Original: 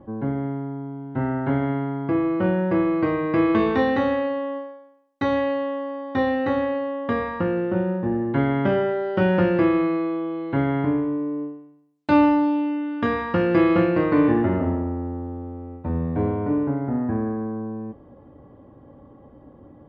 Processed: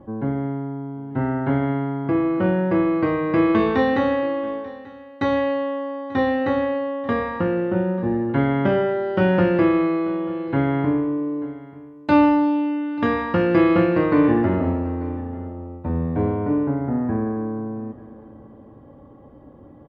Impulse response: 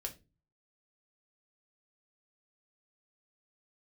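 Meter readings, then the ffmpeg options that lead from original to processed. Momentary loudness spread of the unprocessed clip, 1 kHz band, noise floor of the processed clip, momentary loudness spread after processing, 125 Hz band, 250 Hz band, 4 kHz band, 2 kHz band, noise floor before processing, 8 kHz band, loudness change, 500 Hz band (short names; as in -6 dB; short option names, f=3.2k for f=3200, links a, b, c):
12 LU, +1.5 dB, -45 dBFS, 13 LU, +1.5 dB, +1.5 dB, +1.5 dB, +1.5 dB, -49 dBFS, n/a, +1.5 dB, +1.5 dB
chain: -af "aecho=1:1:888:0.1,volume=1.5dB"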